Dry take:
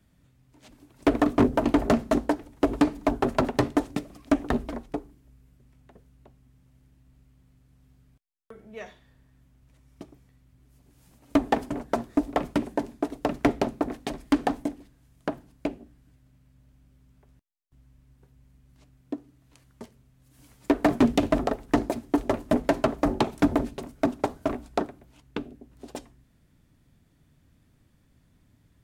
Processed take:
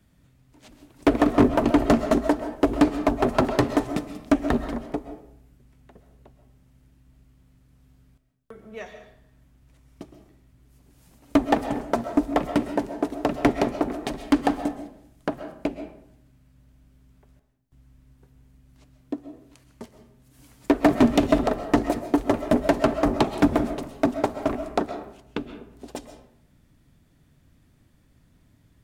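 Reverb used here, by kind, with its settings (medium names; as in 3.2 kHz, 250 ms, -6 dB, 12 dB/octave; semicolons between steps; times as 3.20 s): algorithmic reverb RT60 0.7 s, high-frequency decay 0.6×, pre-delay 90 ms, DRR 9 dB; trim +2.5 dB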